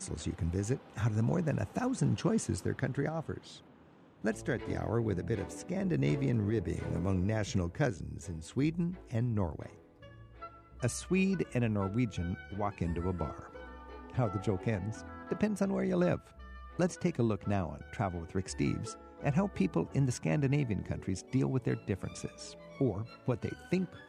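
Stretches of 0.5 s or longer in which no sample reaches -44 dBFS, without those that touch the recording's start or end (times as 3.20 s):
3.57–4.24 s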